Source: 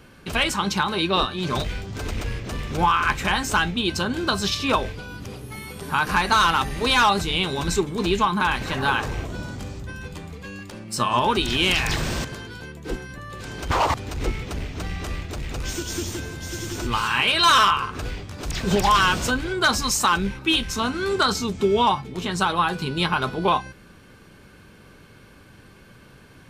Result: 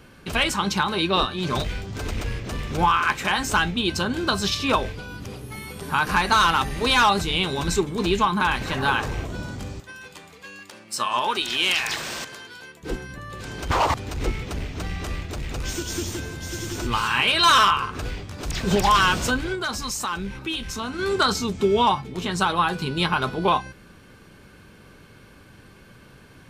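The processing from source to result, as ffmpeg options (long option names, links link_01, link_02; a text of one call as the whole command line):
ffmpeg -i in.wav -filter_complex "[0:a]asettb=1/sr,asplit=3[link_01][link_02][link_03];[link_01]atrim=end=2.994[link_04];[link_02]atrim=start=2.99:end=3.39,asetpts=PTS-STARTPTS,afade=type=in:duration=0.004:curve=qsin,afade=type=out:start_time=0.396:duration=0.004:curve=qsin,highpass=frequency=220:poles=1[link_05];[link_03]atrim=start=3.386[link_06];[link_04][link_05]acrossfade=duration=0.004:curve1=hsin:curve2=qsin[link_07];[link_07][link_06]acrossfade=duration=0.004:curve1=qsin:curve2=hsin,asettb=1/sr,asplit=3[link_08][link_09][link_10];[link_08]atrim=end=9.804[link_11];[link_09]atrim=start=9.8:end=12.83,asetpts=PTS-STARTPTS,afade=type=in:duration=0.004:curve=qsin,afade=type=out:start_time=3.026:duration=0.004:curve=qsin,highpass=frequency=850:poles=1[link_12];[link_10]atrim=start=12.826[link_13];[link_11][link_12]acrossfade=duration=0.004:curve1=hsin:curve2=qsin[link_14];[link_14][link_13]acrossfade=duration=0.004:curve1=qsin:curve2=hsin,asettb=1/sr,asplit=3[link_15][link_16][link_17];[link_15]atrim=end=19.554[link_18];[link_16]atrim=start=19.55:end=20.99,asetpts=PTS-STARTPTS,afade=type=in:duration=0.004:curve=qsin,afade=type=out:start_time=1.436:duration=0.004:curve=qsin,acompressor=threshold=-30dB:ratio=2:attack=3.2:release=140:knee=1:detection=peak[link_19];[link_17]atrim=start=20.986[link_20];[link_18][link_19]acrossfade=duration=0.004:curve1=hsin:curve2=qsin[link_21];[link_21][link_20]acrossfade=duration=0.004:curve1=qsin:curve2=hsin" out.wav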